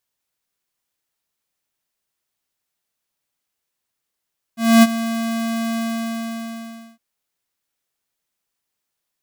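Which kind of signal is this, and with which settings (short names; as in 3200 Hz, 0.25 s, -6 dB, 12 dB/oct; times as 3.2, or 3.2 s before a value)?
ADSR square 228 Hz, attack 0.257 s, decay 35 ms, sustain -14.5 dB, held 1.20 s, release 1.21 s -8 dBFS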